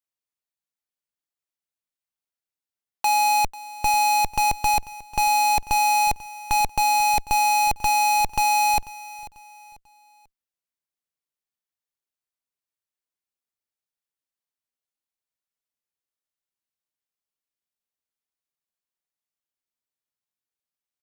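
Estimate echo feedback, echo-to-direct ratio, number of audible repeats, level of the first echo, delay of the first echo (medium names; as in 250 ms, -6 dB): 36%, -18.0 dB, 2, -18.5 dB, 492 ms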